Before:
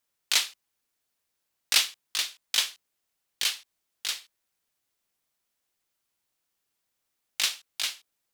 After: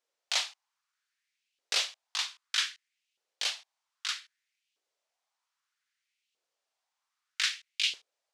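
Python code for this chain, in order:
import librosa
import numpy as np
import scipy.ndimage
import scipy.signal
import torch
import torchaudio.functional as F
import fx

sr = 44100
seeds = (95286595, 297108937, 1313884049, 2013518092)

y = 10.0 ** (-18.0 / 20.0) * np.tanh(x / 10.0 ** (-18.0 / 20.0))
y = scipy.signal.sosfilt(scipy.signal.cheby1(2, 1.0, 6100.0, 'lowpass', fs=sr, output='sos'), y)
y = fx.filter_lfo_highpass(y, sr, shape='saw_up', hz=0.63, low_hz=420.0, high_hz=2900.0, q=3.1)
y = y * librosa.db_to_amplitude(-2.5)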